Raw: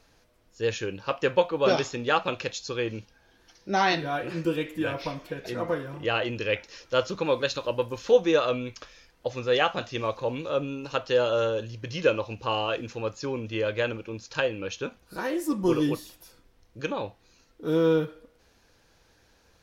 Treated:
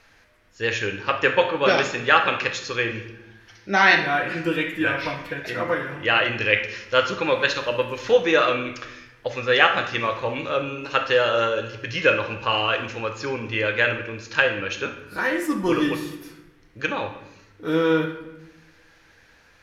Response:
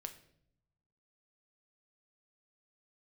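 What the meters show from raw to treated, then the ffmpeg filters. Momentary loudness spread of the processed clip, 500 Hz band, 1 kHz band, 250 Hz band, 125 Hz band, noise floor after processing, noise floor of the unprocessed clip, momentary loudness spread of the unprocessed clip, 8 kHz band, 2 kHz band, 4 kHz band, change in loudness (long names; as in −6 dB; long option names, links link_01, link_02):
12 LU, +2.5 dB, +6.5 dB, +2.5 dB, +1.5 dB, −55 dBFS, −63 dBFS, 11 LU, +2.5 dB, +12.0 dB, +7.0 dB, +5.5 dB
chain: -filter_complex "[0:a]equalizer=frequency=1900:width=0.97:gain=12.5[link_01];[1:a]atrim=start_sample=2205,asetrate=27783,aresample=44100[link_02];[link_01][link_02]afir=irnorm=-1:irlink=0,volume=2.5dB"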